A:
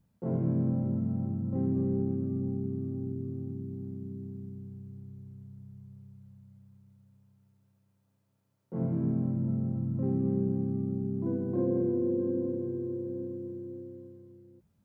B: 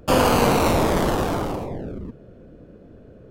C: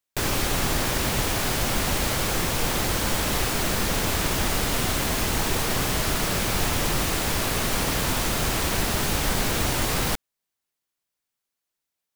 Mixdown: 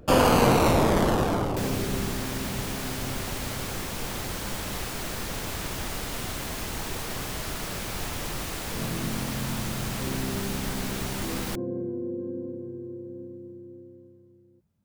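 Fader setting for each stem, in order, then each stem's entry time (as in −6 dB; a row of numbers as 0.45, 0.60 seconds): −3.5, −2.0, −8.5 decibels; 0.00, 0.00, 1.40 seconds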